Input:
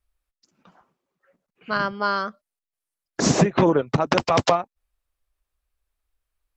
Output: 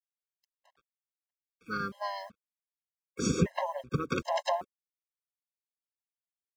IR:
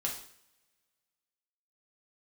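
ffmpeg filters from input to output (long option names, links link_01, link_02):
-filter_complex "[0:a]asplit=3[link_01][link_02][link_03];[link_02]asetrate=22050,aresample=44100,atempo=2,volume=-11dB[link_04];[link_03]asetrate=58866,aresample=44100,atempo=0.749154,volume=-16dB[link_05];[link_01][link_04][link_05]amix=inputs=3:normalize=0,acrusher=bits=7:mix=0:aa=0.5,afftfilt=real='re*gt(sin(2*PI*1.3*pts/sr)*(1-2*mod(floor(b*sr/1024/540),2)),0)':imag='im*gt(sin(2*PI*1.3*pts/sr)*(1-2*mod(floor(b*sr/1024/540),2)),0)':win_size=1024:overlap=0.75,volume=-8.5dB"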